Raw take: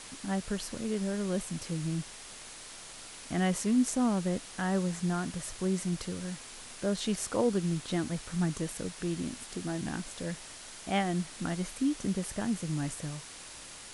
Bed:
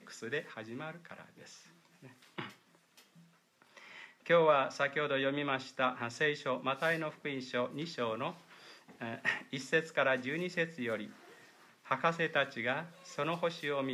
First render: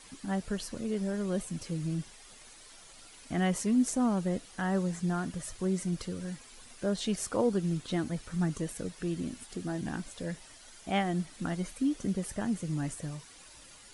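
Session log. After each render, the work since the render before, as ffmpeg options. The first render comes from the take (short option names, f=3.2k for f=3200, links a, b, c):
-af "afftdn=nr=10:nf=-47"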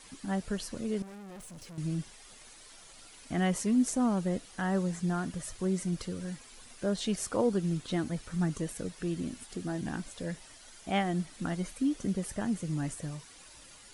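-filter_complex "[0:a]asettb=1/sr,asplit=3[a][b][c];[a]atrim=end=1.024[d];[b]atrim=start=1.02:end=1.78,asetpts=PTS-STARTPTS,afade=t=in:d=0.004:c=qsin,afade=t=out:st=0.756:d=0.004:c=qsin,aeval=exprs='(tanh(178*val(0)+0.25)-tanh(0.25))/178':c=same[e];[c]atrim=start=1.776[f];[d][e]acrossfade=d=0.004:c1=hsin:c2=qsin[g];[g][f]acrossfade=d=0.004:c1=qsin:c2=hsin"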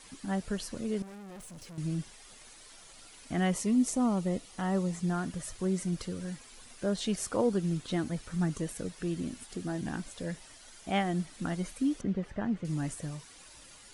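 -filter_complex "[0:a]asettb=1/sr,asplit=3[a][b][c];[a]atrim=end=3.544[d];[b]atrim=start=3.54:end=5.02,asetpts=PTS-STARTPTS,afade=t=in:d=0.004:c=qsin,afade=t=out:st=1.476:d=0.004:c=qsin,bandreject=f=1.6k:w=5.2[e];[c]atrim=start=5.016[f];[d][e]acrossfade=d=0.004:c1=hsin:c2=qsin[g];[g][f]acrossfade=d=0.004:c1=qsin:c2=hsin,asettb=1/sr,asplit=3[h][i][j];[h]atrim=end=12.014[k];[i]atrim=start=12.01:end=12.65,asetpts=PTS-STARTPTS,afade=t=in:d=0.004:c=qsin,afade=t=out:st=0.636:d=0.004:c=qsin,lowpass=2.5k[l];[j]atrim=start=12.646[m];[k][l]acrossfade=d=0.004:c1=hsin:c2=qsin[n];[n][m]acrossfade=d=0.004:c1=qsin:c2=hsin"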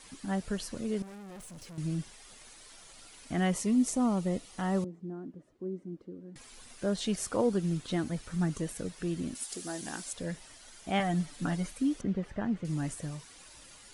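-filter_complex "[0:a]asettb=1/sr,asplit=3[a][b][c];[a]atrim=end=4.844[d];[b]atrim=start=4.84:end=6.36,asetpts=PTS-STARTPTS,afade=t=in:d=0.004:c=qsin,afade=t=out:st=1.516:d=0.004:c=qsin,bandpass=f=310:t=q:w=3[e];[c]atrim=start=6.356[f];[d][e]acrossfade=d=0.004:c1=hsin:c2=qsin[g];[g][f]acrossfade=d=0.004:c1=qsin:c2=hsin,asettb=1/sr,asplit=3[h][i][j];[h]atrim=end=9.354[k];[i]atrim=start=9.35:end=10.13,asetpts=PTS-STARTPTS,afade=t=in:d=0.004:c=qsin,afade=t=out:st=0.776:d=0.004:c=qsin,bass=f=250:g=-13,treble=f=4k:g=11[l];[j]atrim=start=10.126[m];[k][l]acrossfade=d=0.004:c1=hsin:c2=qsin[n];[n][m]acrossfade=d=0.004:c1=qsin:c2=hsin,asettb=1/sr,asplit=3[o][p][q];[o]atrim=end=10.994[r];[p]atrim=start=10.99:end=11.66,asetpts=PTS-STARTPTS,afade=t=in:d=0.004:c=qsin,afade=t=out:st=0.666:d=0.004:c=qsin,aecho=1:1:6.9:0.65,atrim=end_sample=29547[s];[q]atrim=start=11.656[t];[r][s]acrossfade=d=0.004:c1=hsin:c2=qsin[u];[u][t]acrossfade=d=0.004:c1=qsin:c2=hsin"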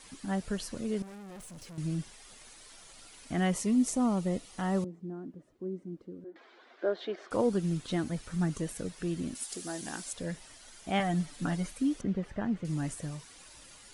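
-filter_complex "[0:a]asettb=1/sr,asplit=3[a][b][c];[a]atrim=end=6.244[d];[b]atrim=start=6.24:end=7.31,asetpts=PTS-STARTPTS,afade=t=in:d=0.004:c=qsin,afade=t=out:st=1.066:d=0.004:c=qsin,highpass=f=330:w=0.5412,highpass=f=330:w=1.3066,equalizer=f=350:t=q:w=4:g=9,equalizer=f=670:t=q:w=4:g=5,equalizer=f=1.5k:t=q:w=4:g=4,equalizer=f=2.7k:t=q:w=4:g=-9,lowpass=f=3.3k:w=0.5412,lowpass=f=3.3k:w=1.3066[e];[c]atrim=start=7.306[f];[d][e]acrossfade=d=0.004:c1=hsin:c2=qsin[g];[g][f]acrossfade=d=0.004:c1=qsin:c2=hsin"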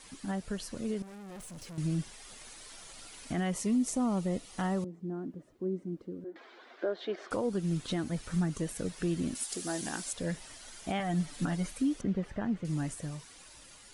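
-af "alimiter=level_in=1.5dB:limit=-24dB:level=0:latency=1:release=411,volume=-1.5dB,dynaudnorm=f=320:g=11:m=3.5dB"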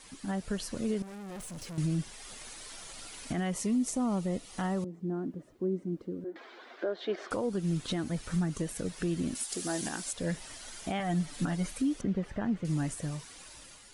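-af "alimiter=level_in=2dB:limit=-24dB:level=0:latency=1:release=297,volume=-2dB,dynaudnorm=f=150:g=5:m=3.5dB"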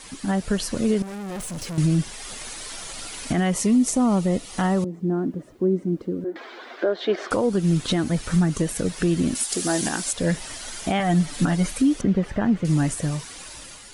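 -af "volume=10.5dB"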